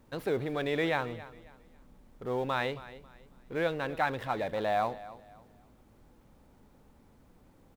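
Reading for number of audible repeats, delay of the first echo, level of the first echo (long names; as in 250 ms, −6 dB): 2, 272 ms, −17.0 dB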